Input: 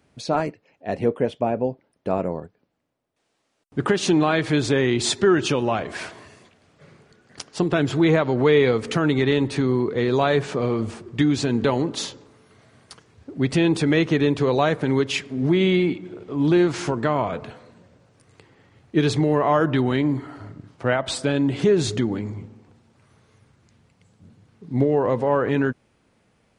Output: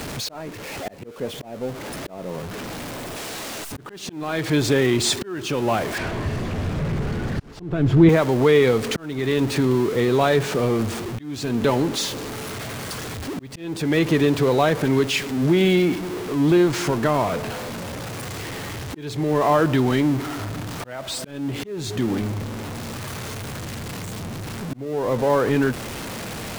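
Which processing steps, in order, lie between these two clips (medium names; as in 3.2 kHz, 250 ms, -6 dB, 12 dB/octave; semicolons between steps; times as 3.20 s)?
jump at every zero crossing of -26 dBFS; slow attack 496 ms; 5.98–8.09 s: RIAA curve playback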